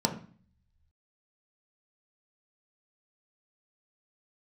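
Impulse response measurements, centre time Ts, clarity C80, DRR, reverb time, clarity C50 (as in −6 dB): 14 ms, 14.5 dB, 2.0 dB, 0.45 s, 10.5 dB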